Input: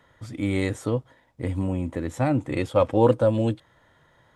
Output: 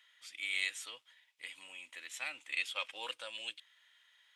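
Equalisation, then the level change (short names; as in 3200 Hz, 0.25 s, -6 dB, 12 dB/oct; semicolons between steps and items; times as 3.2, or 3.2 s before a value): resonant high-pass 2700 Hz, resonance Q 2.6; -3.0 dB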